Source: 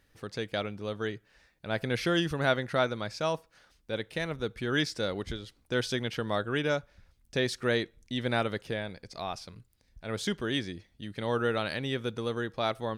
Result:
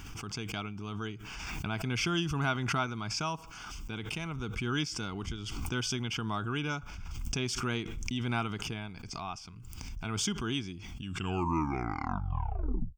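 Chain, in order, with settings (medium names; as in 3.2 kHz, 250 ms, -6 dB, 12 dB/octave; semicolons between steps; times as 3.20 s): tape stop on the ending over 2.07 s; static phaser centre 2.7 kHz, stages 8; swell ahead of each attack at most 25 dB/s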